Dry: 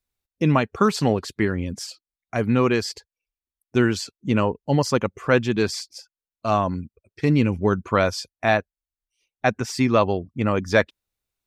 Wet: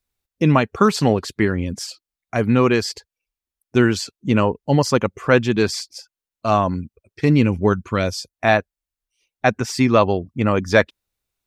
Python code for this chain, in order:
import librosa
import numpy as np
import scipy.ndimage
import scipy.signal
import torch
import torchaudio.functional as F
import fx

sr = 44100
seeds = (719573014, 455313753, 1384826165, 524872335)

y = fx.peak_eq(x, sr, hz=fx.line((7.72, 390.0), (8.32, 2500.0)), db=-11.0, octaves=1.6, at=(7.72, 8.32), fade=0.02)
y = y * librosa.db_to_amplitude(3.5)